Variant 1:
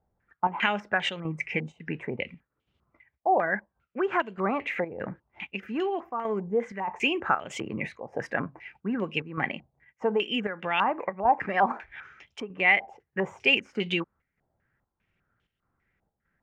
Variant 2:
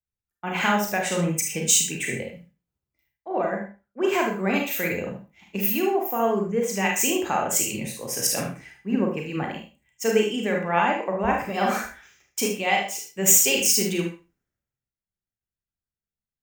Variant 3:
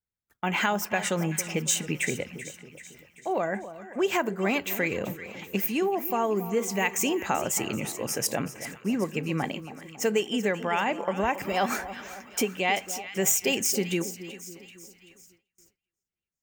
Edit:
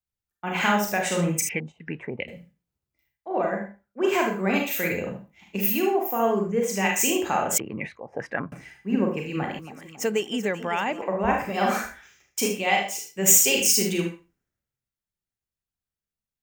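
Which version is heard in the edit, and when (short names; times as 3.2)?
2
1.49–2.28 from 1
7.58–8.52 from 1
9.59–11.02 from 3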